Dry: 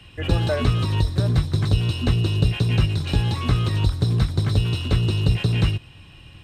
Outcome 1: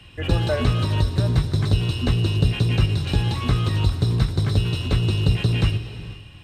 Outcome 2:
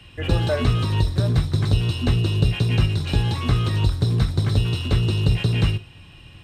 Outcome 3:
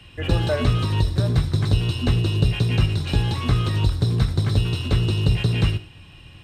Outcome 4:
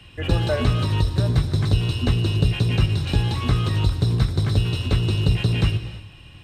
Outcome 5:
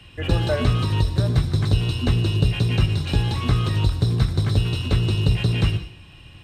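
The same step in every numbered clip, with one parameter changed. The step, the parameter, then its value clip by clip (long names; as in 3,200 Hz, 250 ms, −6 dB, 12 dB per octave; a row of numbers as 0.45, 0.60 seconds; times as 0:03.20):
reverb whose tail is shaped and stops, gate: 530, 80, 130, 350, 210 milliseconds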